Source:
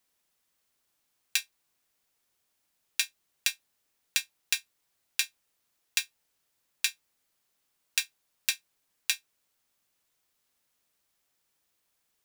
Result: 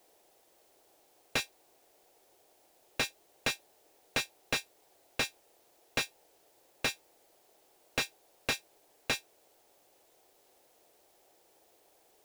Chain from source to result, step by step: high-order bell 520 Hz +15 dB; slew-rate limiter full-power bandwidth 54 Hz; trim +8.5 dB

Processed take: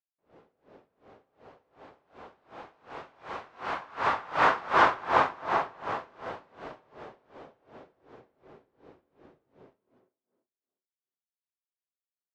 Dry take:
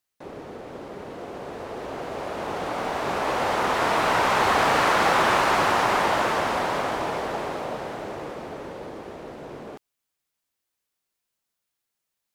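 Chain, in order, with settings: Doppler pass-by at 4.69 s, 32 m/s, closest 12 m; dynamic bell 1.1 kHz, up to +6 dB, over -34 dBFS, Q 0.85; in parallel at +3 dB: compression, threshold -55 dBFS, peak gain reduction 37 dB; on the sum: distance through air 130 m; on a send: tape echo 241 ms, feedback 37%, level -8.5 dB, low-pass 2.2 kHz; on the sum: gated-style reverb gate 290 ms flat, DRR 0 dB; logarithmic tremolo 2.7 Hz, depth 25 dB; trim -4 dB

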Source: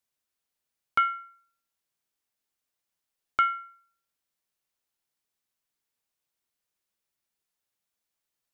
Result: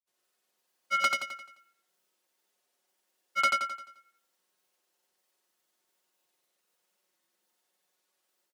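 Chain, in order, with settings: high-pass 250 Hz 12 dB/octave; peaking EQ 450 Hz +6 dB 1.8 oct; band-stop 2.3 kHz, Q 21; comb 5.5 ms, depth 54%; hard clipper -27 dBFS, distortion -5 dB; granulator, pitch spread up and down by 0 st; feedback delay 87 ms, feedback 44%, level -3 dB; trim +6.5 dB

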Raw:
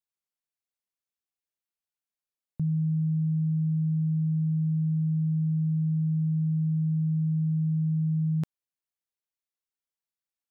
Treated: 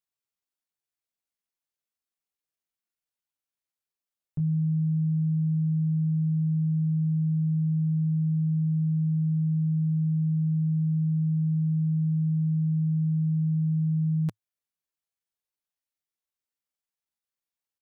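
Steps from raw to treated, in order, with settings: dynamic bell 110 Hz, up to +4 dB, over -45 dBFS, Q 2.4; tempo 0.59×

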